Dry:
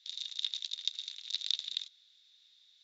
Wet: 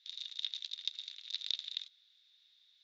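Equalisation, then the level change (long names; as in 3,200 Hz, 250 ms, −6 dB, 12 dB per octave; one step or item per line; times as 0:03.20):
high-pass filter 910 Hz 12 dB per octave
high-frequency loss of the air 130 metres
0.0 dB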